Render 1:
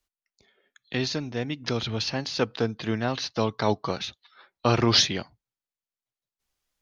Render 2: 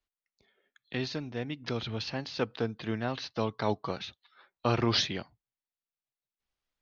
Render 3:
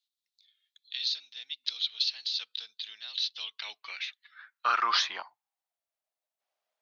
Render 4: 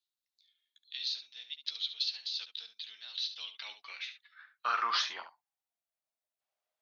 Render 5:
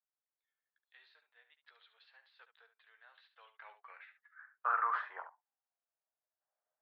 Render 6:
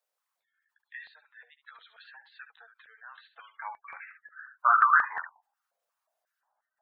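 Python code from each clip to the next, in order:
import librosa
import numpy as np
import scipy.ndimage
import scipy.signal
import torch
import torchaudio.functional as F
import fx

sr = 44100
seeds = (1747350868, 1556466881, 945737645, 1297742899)

y1 = scipy.signal.sosfilt(scipy.signal.butter(2, 4400.0, 'lowpass', fs=sr, output='sos'), x)
y1 = y1 * librosa.db_to_amplitude(-5.5)
y2 = fx.filter_sweep_highpass(y1, sr, from_hz=3800.0, to_hz=640.0, start_s=3.17, end_s=5.81, q=5.0)
y3 = fx.room_early_taps(y2, sr, ms=(13, 71), db=(-9.0, -10.5))
y3 = y3 * librosa.db_to_amplitude(-5.5)
y4 = scipy.signal.sosfilt(scipy.signal.cheby1(3, 1.0, [440.0, 1700.0], 'bandpass', fs=sr, output='sos'), y3)
y5 = fx.spec_gate(y4, sr, threshold_db=-15, keep='strong')
y5 = fx.filter_held_highpass(y5, sr, hz=5.6, low_hz=540.0, high_hz=1800.0)
y5 = y5 * librosa.db_to_amplitude(9.0)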